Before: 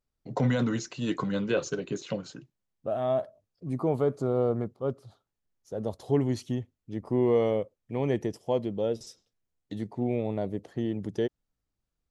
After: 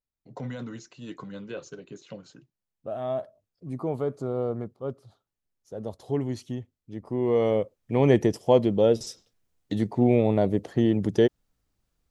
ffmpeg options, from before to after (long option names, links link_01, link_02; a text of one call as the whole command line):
ffmpeg -i in.wav -af "volume=8.5dB,afade=type=in:start_time=2.04:duration=1.01:silence=0.421697,afade=type=in:start_time=7.19:duration=0.9:silence=0.281838" out.wav